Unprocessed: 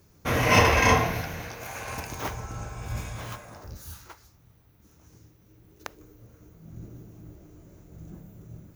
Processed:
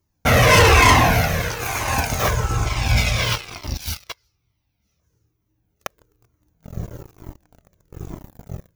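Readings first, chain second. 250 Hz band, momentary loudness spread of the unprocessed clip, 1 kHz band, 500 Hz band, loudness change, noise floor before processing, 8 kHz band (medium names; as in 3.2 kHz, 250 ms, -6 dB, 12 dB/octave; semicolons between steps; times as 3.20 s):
+6.5 dB, 25 LU, +8.0 dB, +7.5 dB, +8.0 dB, -59 dBFS, +10.5 dB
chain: waveshaping leveller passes 5; time-frequency box 2.66–5.00 s, 2–6 kHz +9 dB; Shepard-style flanger falling 1.1 Hz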